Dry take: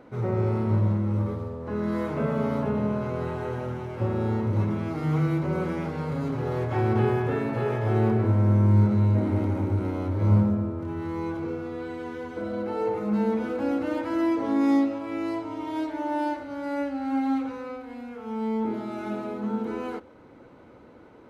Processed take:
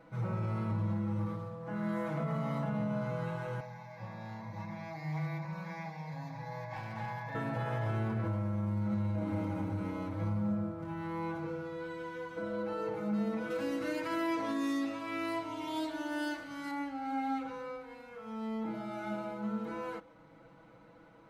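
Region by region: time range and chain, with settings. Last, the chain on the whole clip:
3.6–7.35 HPF 340 Hz 6 dB/oct + fixed phaser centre 2000 Hz, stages 8 + hard clip -27.5 dBFS
13.5–16.71 high shelf 2500 Hz +10 dB + notch 830 Hz
whole clip: bell 380 Hz -14.5 dB 0.39 oct; comb 6.1 ms, depth 99%; limiter -18.5 dBFS; gain -7.5 dB

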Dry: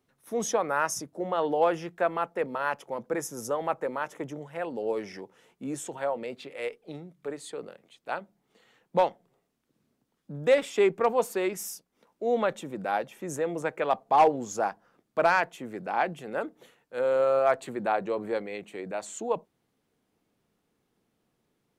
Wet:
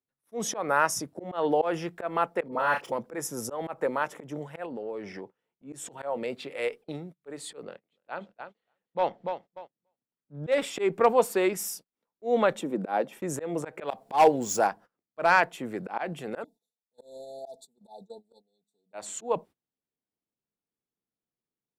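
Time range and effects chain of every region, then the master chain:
2.48–2.92 median filter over 3 samples + doubler 34 ms -6.5 dB + dispersion highs, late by 45 ms, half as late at 1200 Hz
4.66–5.73 LPF 2400 Hz 6 dB/oct + compressor 3:1, threshold -38 dBFS
7.63–10.52 LPF 4600 Hz + feedback echo 0.292 s, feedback 28%, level -13 dB
12.61–13.13 HPF 190 Hz 24 dB/oct + tilt shelf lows +5 dB, about 890 Hz
13.87–14.67 median filter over 3 samples + high shelf 4100 Hz +10.5 dB + notch 1200 Hz, Q 8.9
16.44–18.93 brick-wall FIR band-stop 900–3400 Hz + passive tone stack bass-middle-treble 5-5-5 + comb 4.5 ms, depth 81%
whole clip: notch 6400 Hz, Q 14; gate -47 dBFS, range -25 dB; auto swell 0.152 s; gain +3.5 dB

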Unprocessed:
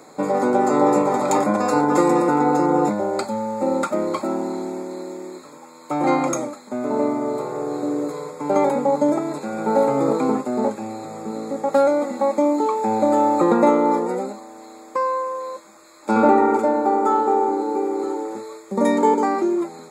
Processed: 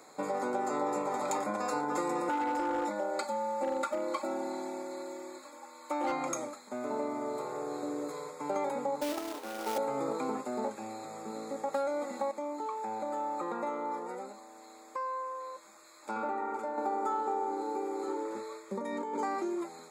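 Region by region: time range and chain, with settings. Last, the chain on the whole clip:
2.29–6.12 tone controls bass -8 dB, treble -2 dB + comb 3.5 ms, depth 84% + hard clip -11 dBFS
9.01–9.78 Chebyshev high-pass 230 Hz, order 6 + air absorption 340 m + companded quantiser 4-bit
12.31–16.78 compressor 1.5:1, threshold -41 dBFS + dynamic EQ 1200 Hz, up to +4 dB, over -38 dBFS, Q 0.71
18.08–19.19 high shelf 4000 Hz -7.5 dB + notch 760 Hz, Q 7 + negative-ratio compressor -23 dBFS
whole clip: low shelf 460 Hz -10 dB; compressor 2.5:1, threshold -25 dBFS; gain -6 dB

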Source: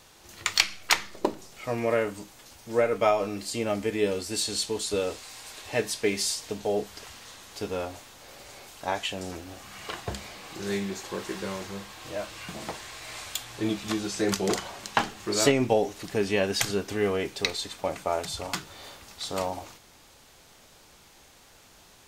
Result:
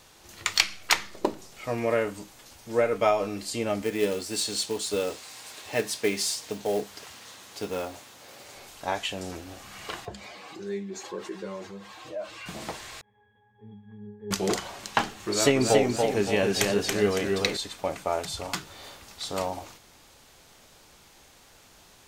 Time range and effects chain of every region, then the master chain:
3.82–8.55 HPF 110 Hz + short-mantissa float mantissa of 2-bit
10.05–12.46 spectral contrast raised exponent 1.6 + HPF 300 Hz 6 dB/oct
13.01–14.31 CVSD 16 kbps + octave resonator G#, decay 0.58 s
15.15–17.57 notch 4900 Hz, Q 23 + warbling echo 0.282 s, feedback 44%, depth 96 cents, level -3.5 dB
whole clip: dry

